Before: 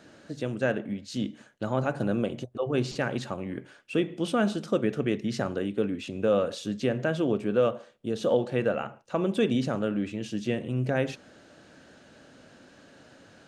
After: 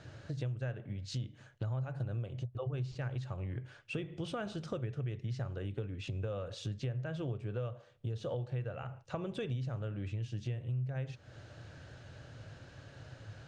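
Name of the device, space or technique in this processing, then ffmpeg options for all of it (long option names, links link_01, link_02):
jukebox: -af "lowpass=6700,lowshelf=frequency=160:width_type=q:width=3:gain=11,acompressor=threshold=-35dB:ratio=5,volume=-1.5dB"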